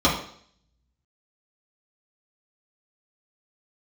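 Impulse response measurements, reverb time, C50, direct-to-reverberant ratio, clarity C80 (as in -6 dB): 0.60 s, 6.0 dB, -6.5 dB, 9.5 dB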